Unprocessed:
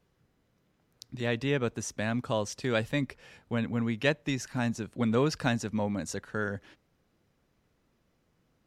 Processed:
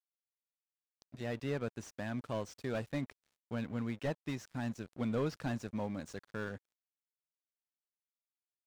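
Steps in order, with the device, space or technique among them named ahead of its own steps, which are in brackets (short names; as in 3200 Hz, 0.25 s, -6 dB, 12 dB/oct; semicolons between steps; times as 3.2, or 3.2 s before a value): early transistor amplifier (crossover distortion -46 dBFS; slew limiter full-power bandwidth 40 Hz); gain -6.5 dB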